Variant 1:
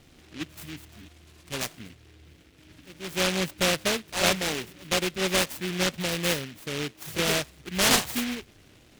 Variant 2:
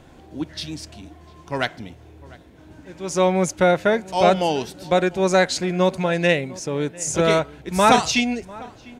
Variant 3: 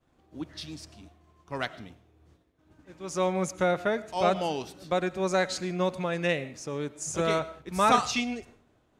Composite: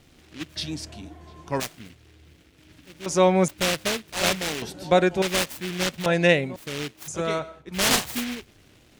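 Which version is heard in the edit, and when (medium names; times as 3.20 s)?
1
0.56–1.60 s: from 2
3.06–3.48 s: from 2
4.62–5.22 s: from 2
6.06–6.56 s: from 2
7.08–7.74 s: from 3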